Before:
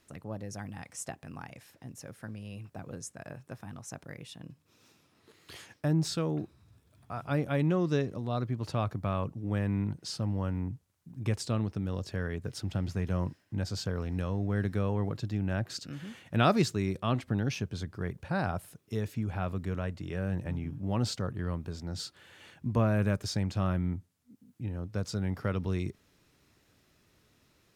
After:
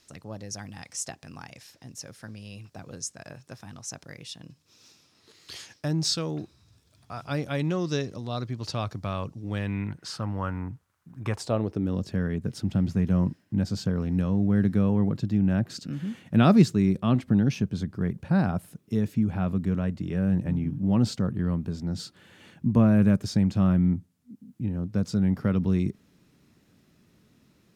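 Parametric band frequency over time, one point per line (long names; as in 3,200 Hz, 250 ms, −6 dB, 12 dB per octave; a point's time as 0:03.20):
parametric band +12 dB 1.4 octaves
0:09.45 5,200 Hz
0:10.10 1,300 Hz
0:11.24 1,300 Hz
0:12.00 200 Hz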